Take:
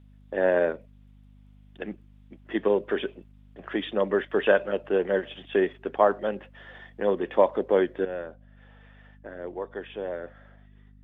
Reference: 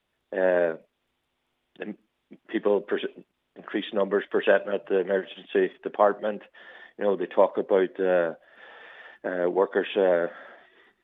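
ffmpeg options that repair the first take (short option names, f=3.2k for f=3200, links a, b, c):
-af "bandreject=f=50.4:t=h:w=4,bandreject=f=100.8:t=h:w=4,bandreject=f=151.2:t=h:w=4,bandreject=f=201.6:t=h:w=4,bandreject=f=252:t=h:w=4,asetnsamples=n=441:p=0,asendcmd='8.05 volume volume 11.5dB',volume=0dB"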